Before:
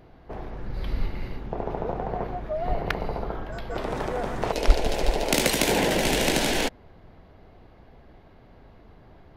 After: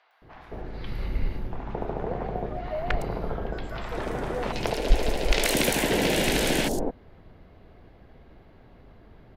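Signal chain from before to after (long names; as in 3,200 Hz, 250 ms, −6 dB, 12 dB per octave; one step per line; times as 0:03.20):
hard clipping −9 dBFS, distortion −19 dB
three-band delay without the direct sound mids, highs, lows 110/220 ms, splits 850/5,700 Hz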